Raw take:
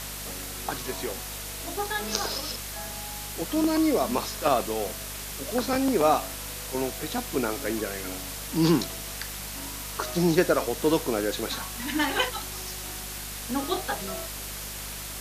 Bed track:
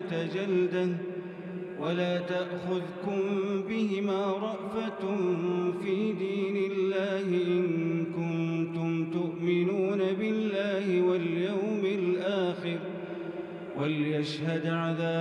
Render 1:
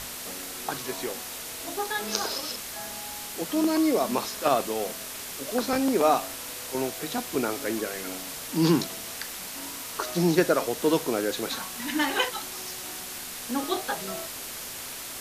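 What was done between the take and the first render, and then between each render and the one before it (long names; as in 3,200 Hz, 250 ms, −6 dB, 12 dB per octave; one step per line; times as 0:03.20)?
mains-hum notches 50/100/150/200 Hz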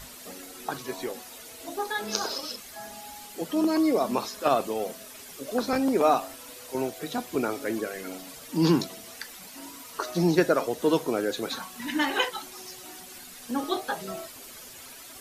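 broadband denoise 11 dB, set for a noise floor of −38 dBFS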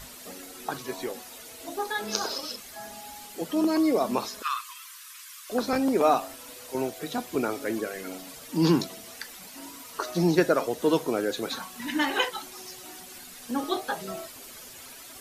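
0:04.42–0:05.50: linear-phase brick-wall high-pass 960 Hz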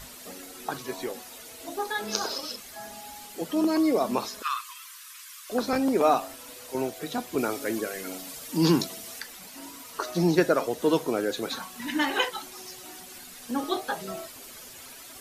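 0:07.38–0:09.20: high-shelf EQ 4,100 Hz +5.5 dB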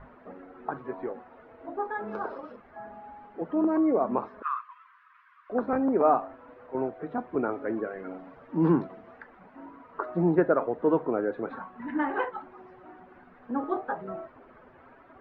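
low-pass filter 1,500 Hz 24 dB per octave
low-shelf EQ 180 Hz −3 dB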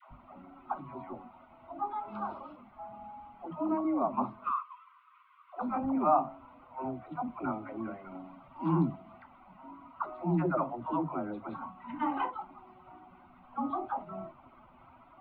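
phaser with its sweep stopped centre 1,700 Hz, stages 6
all-pass dispersion lows, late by 113 ms, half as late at 440 Hz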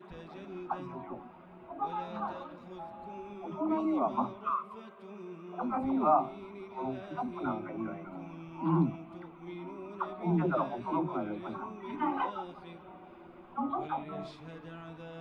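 mix in bed track −17 dB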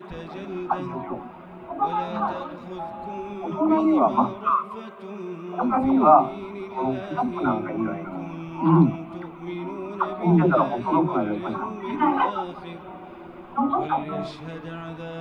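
level +11 dB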